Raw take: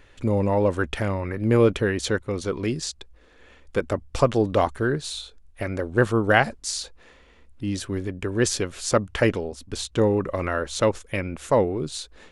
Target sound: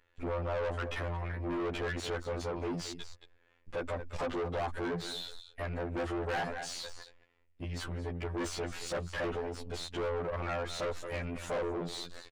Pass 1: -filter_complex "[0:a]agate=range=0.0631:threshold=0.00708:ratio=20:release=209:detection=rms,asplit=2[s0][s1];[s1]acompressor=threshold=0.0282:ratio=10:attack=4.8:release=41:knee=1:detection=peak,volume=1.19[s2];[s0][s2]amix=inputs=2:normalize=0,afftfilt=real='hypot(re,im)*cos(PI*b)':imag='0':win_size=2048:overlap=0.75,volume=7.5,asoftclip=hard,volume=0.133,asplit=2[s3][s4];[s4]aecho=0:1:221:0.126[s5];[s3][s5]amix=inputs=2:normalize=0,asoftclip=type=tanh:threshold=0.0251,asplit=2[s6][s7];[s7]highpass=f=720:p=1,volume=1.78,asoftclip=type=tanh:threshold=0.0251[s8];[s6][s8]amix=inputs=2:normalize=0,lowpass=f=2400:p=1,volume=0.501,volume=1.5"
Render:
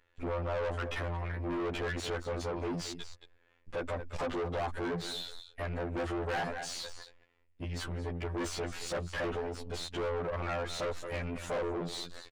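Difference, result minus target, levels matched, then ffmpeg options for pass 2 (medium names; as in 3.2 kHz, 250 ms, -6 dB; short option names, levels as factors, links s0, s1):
compression: peak gain reduction -6 dB
-filter_complex "[0:a]agate=range=0.0631:threshold=0.00708:ratio=20:release=209:detection=rms,asplit=2[s0][s1];[s1]acompressor=threshold=0.0133:ratio=10:attack=4.8:release=41:knee=1:detection=peak,volume=1.19[s2];[s0][s2]amix=inputs=2:normalize=0,afftfilt=real='hypot(re,im)*cos(PI*b)':imag='0':win_size=2048:overlap=0.75,volume=7.5,asoftclip=hard,volume=0.133,asplit=2[s3][s4];[s4]aecho=0:1:221:0.126[s5];[s3][s5]amix=inputs=2:normalize=0,asoftclip=type=tanh:threshold=0.0251,asplit=2[s6][s7];[s7]highpass=f=720:p=1,volume=1.78,asoftclip=type=tanh:threshold=0.0251[s8];[s6][s8]amix=inputs=2:normalize=0,lowpass=f=2400:p=1,volume=0.501,volume=1.5"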